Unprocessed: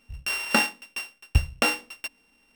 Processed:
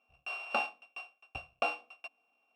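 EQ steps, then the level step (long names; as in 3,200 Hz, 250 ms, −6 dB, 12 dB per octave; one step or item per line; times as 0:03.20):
dynamic equaliser 4,300 Hz, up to +3 dB, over −39 dBFS, Q 2.7
formant filter a
+2.5 dB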